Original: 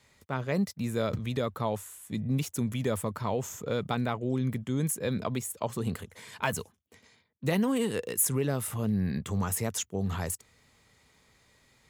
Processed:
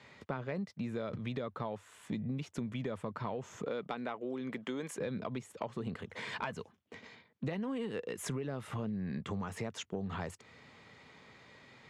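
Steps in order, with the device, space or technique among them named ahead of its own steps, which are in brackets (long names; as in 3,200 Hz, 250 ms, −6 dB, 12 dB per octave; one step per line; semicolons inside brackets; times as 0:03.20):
0:03.64–0:04.97: high-pass filter 220 Hz → 470 Hz 12 dB per octave
AM radio (band-pass filter 130–3,300 Hz; downward compressor 10 to 1, threshold −43 dBFS, peak gain reduction 19 dB; soft clipping −31.5 dBFS, distortion −26 dB)
level +8.5 dB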